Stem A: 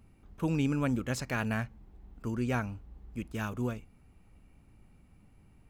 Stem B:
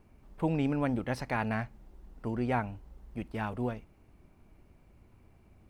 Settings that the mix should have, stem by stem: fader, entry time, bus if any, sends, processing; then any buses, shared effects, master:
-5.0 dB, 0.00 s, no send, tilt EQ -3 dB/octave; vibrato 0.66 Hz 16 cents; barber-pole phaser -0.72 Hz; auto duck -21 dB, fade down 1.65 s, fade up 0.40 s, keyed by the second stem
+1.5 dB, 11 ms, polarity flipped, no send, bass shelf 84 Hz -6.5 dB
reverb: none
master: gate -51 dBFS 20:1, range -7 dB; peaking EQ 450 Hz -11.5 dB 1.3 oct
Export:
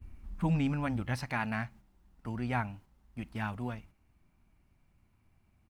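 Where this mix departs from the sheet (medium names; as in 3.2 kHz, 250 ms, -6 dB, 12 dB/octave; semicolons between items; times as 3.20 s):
stem A -5.0 dB -> +3.5 dB; stem B: polarity flipped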